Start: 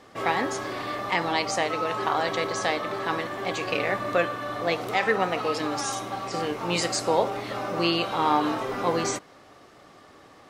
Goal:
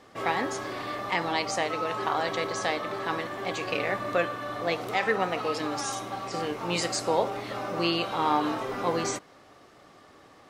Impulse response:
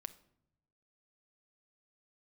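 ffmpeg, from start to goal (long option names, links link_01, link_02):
-af "volume=-2.5dB"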